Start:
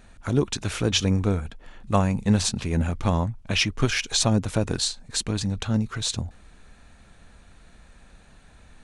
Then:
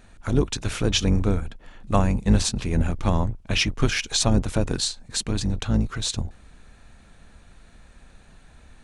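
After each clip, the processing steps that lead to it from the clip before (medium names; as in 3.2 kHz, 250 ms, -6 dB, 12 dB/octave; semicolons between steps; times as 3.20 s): octave divider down 2 oct, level -1 dB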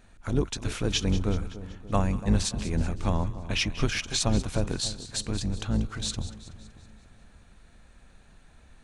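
two-band feedback delay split 970 Hz, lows 290 ms, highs 188 ms, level -14 dB; trim -5 dB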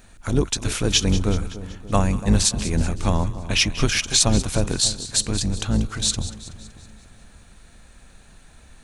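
treble shelf 5.2 kHz +10 dB; trim +5.5 dB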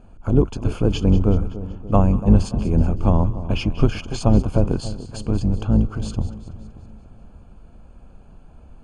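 boxcar filter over 23 samples; trim +4.5 dB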